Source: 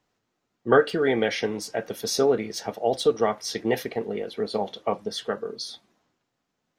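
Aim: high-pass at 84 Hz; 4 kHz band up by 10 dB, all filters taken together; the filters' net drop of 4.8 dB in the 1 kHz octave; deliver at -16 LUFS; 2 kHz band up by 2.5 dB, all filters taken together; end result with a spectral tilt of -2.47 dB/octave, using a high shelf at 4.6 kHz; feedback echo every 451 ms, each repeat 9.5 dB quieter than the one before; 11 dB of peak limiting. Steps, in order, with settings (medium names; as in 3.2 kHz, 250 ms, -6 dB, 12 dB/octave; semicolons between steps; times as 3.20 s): high-pass 84 Hz; peaking EQ 1 kHz -9 dB; peaking EQ 2 kHz +3.5 dB; peaking EQ 4 kHz +8.5 dB; treble shelf 4.6 kHz +6.5 dB; peak limiter -17.5 dBFS; feedback delay 451 ms, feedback 33%, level -9.5 dB; trim +12 dB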